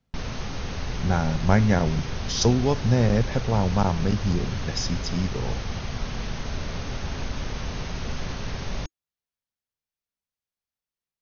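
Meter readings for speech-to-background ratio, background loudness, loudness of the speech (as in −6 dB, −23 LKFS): 8.5 dB, −33.0 LKFS, −24.5 LKFS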